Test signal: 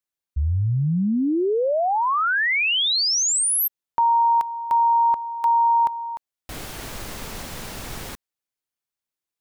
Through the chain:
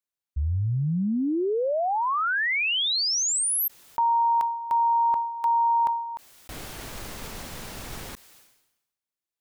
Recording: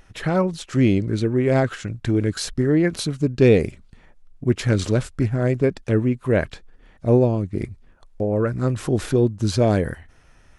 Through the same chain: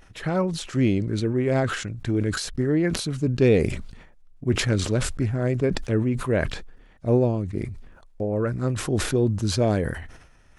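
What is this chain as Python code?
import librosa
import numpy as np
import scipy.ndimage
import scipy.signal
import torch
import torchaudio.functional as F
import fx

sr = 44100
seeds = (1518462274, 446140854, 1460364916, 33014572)

y = fx.sustainer(x, sr, db_per_s=63.0)
y = F.gain(torch.from_numpy(y), -4.0).numpy()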